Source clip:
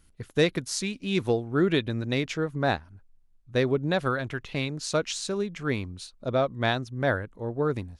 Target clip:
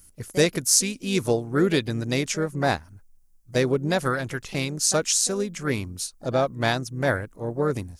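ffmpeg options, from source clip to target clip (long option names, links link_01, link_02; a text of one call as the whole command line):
ffmpeg -i in.wav -filter_complex "[0:a]asplit=2[link_01][link_02];[link_02]asetrate=55563,aresample=44100,atempo=0.793701,volume=-13dB[link_03];[link_01][link_03]amix=inputs=2:normalize=0,aexciter=amount=5:drive=4:freq=5200,volume=2dB" out.wav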